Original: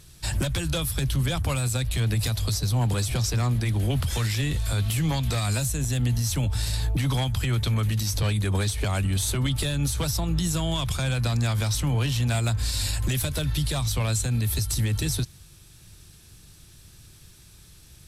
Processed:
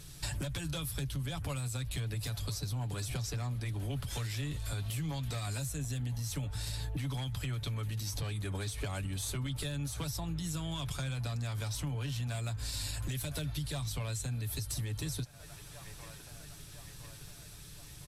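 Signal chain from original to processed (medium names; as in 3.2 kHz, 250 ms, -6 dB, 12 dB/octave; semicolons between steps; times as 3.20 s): comb 7 ms, depth 43%; feedback echo behind a band-pass 1010 ms, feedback 58%, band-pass 1.1 kHz, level -17 dB; compression 6:1, threshold -35 dBFS, peak gain reduction 15.5 dB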